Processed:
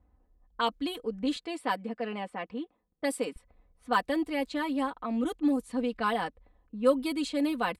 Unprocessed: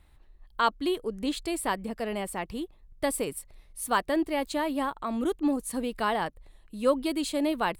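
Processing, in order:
high-pass filter 58 Hz 12 dB per octave, from 0:01.36 200 Hz, from 0:03.36 55 Hz
low-pass that shuts in the quiet parts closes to 780 Hz, open at −23 dBFS
comb filter 4 ms, depth 76%
level −3.5 dB

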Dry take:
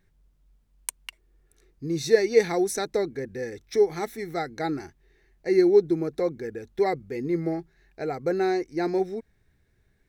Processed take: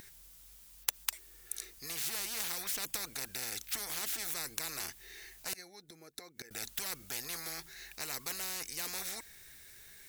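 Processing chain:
0:05.53–0:06.51: gate with flip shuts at −27 dBFS, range −28 dB
first-order pre-emphasis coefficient 0.97
every bin compressed towards the loudest bin 10 to 1
level −1 dB

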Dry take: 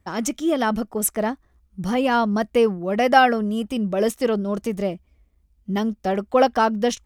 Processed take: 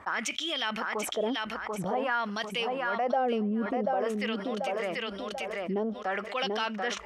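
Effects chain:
auto-filter band-pass sine 0.5 Hz 300–3,300 Hz
feedback echo with a high-pass in the loop 738 ms, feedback 18%, high-pass 200 Hz, level −7 dB
envelope flattener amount 70%
level −8.5 dB

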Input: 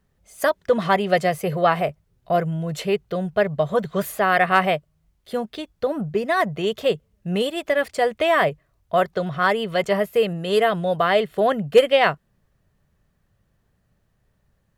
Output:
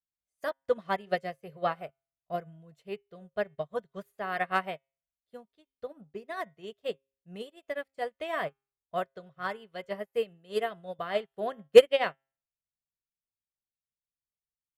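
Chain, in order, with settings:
hum removal 134.8 Hz, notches 27
expander for the loud parts 2.5 to 1, over −36 dBFS

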